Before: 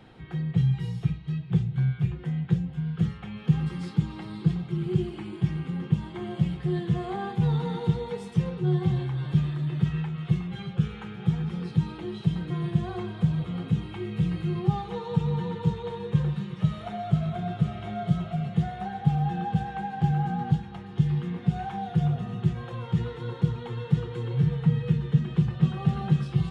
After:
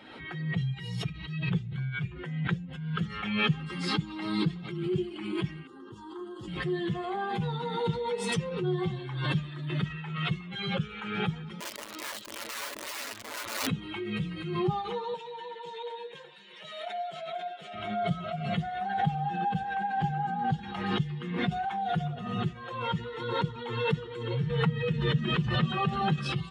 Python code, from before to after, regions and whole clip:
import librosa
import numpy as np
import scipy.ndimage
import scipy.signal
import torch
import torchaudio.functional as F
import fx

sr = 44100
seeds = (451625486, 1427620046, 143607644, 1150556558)

y = fx.chain(x, sr, fx.highpass(hz=83.0, slope=12),
    fx.fixed_phaser(hz=620.0, stages=6), at=(5.67, 6.48))
y = fx.chain(y, sr, fx.lower_of_two(delay_ms=8.9),
    fx.auto_swell(attack_ms=151.0),
    fx.overflow_wrap(gain_db=33.0), at=(11.6, 13.67))
y = fx.chain(y, sr, fx.highpass(hz=480.0, slope=12),
    fx.peak_eq(hz=1200.0, db=-11.0, octaves=0.27), at=(15.14, 17.74))
y = fx.bin_expand(y, sr, power=1.5)
y = fx.highpass(y, sr, hz=440.0, slope=6)
y = fx.pre_swell(y, sr, db_per_s=46.0)
y = y * librosa.db_to_amplitude(4.5)